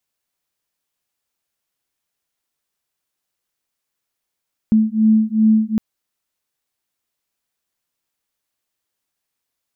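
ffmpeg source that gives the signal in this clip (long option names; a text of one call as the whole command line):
ffmpeg -f lavfi -i "aevalsrc='0.188*(sin(2*PI*217*t)+sin(2*PI*219.6*t))':duration=1.06:sample_rate=44100" out.wav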